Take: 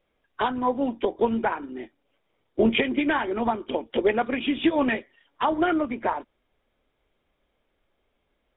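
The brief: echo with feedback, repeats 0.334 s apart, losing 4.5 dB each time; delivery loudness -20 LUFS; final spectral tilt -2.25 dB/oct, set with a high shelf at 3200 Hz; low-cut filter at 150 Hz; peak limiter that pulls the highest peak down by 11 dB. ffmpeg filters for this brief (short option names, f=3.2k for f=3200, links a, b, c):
-af "highpass=150,highshelf=f=3.2k:g=5.5,alimiter=limit=-19dB:level=0:latency=1,aecho=1:1:334|668|1002|1336|1670|2004|2338|2672|3006:0.596|0.357|0.214|0.129|0.0772|0.0463|0.0278|0.0167|0.01,volume=8dB"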